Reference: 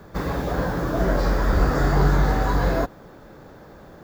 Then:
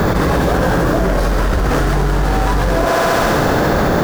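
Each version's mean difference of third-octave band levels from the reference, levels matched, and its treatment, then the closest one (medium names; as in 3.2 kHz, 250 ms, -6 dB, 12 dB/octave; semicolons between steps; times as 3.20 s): 9.5 dB: tracing distortion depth 0.15 ms; thinning echo 68 ms, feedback 80%, high-pass 340 Hz, level -9 dB; level flattener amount 100%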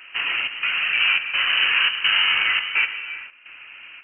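21.5 dB: high-pass 190 Hz 6 dB/octave; trance gate "xxxxxx..x" 191 bpm; gated-style reverb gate 440 ms flat, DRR 7.5 dB; frequency inversion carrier 3 kHz; trim +4 dB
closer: first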